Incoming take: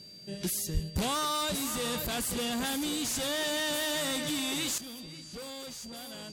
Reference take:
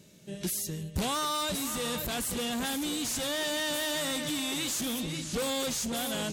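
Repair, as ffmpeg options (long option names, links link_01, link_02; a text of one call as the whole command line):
ffmpeg -i in.wav -filter_complex "[0:a]bandreject=frequency=4700:width=30,asplit=3[link_01][link_02][link_03];[link_01]afade=type=out:start_time=0.73:duration=0.02[link_04];[link_02]highpass=frequency=140:width=0.5412,highpass=frequency=140:width=1.3066,afade=type=in:start_time=0.73:duration=0.02,afade=type=out:start_time=0.85:duration=0.02[link_05];[link_03]afade=type=in:start_time=0.85:duration=0.02[link_06];[link_04][link_05][link_06]amix=inputs=3:normalize=0,asetnsamples=nb_out_samples=441:pad=0,asendcmd='4.78 volume volume 11.5dB',volume=0dB" out.wav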